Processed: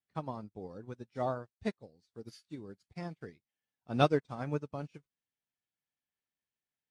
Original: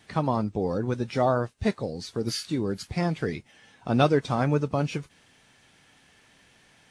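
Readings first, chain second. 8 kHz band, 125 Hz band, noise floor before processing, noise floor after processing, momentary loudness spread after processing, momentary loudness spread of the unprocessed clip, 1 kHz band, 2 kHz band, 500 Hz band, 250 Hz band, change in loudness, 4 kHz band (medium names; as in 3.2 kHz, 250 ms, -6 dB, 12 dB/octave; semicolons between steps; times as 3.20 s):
under -15 dB, -12.0 dB, -60 dBFS, under -85 dBFS, 21 LU, 10 LU, -9.0 dB, -10.5 dB, -9.5 dB, -12.0 dB, -9.5 dB, -11.0 dB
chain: upward expansion 2.5:1, over -41 dBFS; trim -3.5 dB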